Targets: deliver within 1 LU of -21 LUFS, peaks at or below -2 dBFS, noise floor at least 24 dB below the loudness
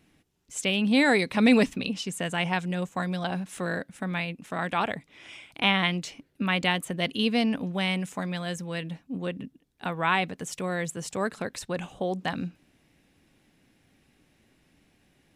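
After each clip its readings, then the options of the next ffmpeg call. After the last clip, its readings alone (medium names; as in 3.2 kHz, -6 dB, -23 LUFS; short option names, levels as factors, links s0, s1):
loudness -27.5 LUFS; peak level -9.5 dBFS; loudness target -21.0 LUFS
-> -af "volume=2.11"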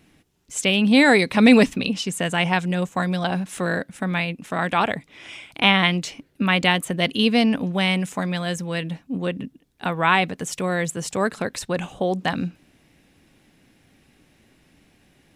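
loudness -21.0 LUFS; peak level -3.0 dBFS; noise floor -60 dBFS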